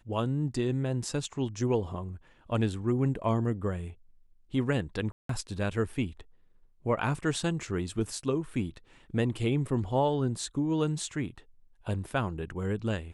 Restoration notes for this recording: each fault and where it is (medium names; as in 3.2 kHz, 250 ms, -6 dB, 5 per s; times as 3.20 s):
5.12–5.29 s: dropout 173 ms